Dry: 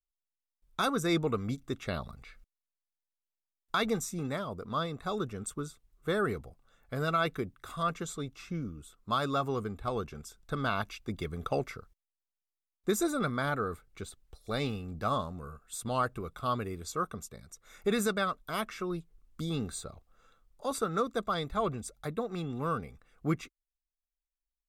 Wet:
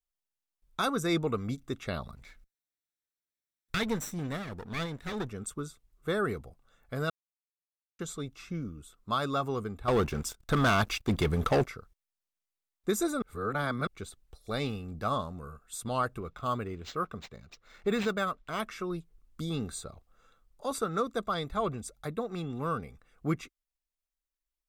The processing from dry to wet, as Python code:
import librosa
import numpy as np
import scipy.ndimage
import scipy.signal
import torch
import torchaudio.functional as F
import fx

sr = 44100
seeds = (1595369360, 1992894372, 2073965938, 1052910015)

y = fx.lower_of_two(x, sr, delay_ms=0.53, at=(2.15, 5.29))
y = fx.leveller(y, sr, passes=3, at=(9.88, 11.66))
y = fx.resample_linear(y, sr, factor=4, at=(16.2, 18.6))
y = fx.edit(y, sr, fx.silence(start_s=7.1, length_s=0.89),
    fx.reverse_span(start_s=13.22, length_s=0.65), tone=tone)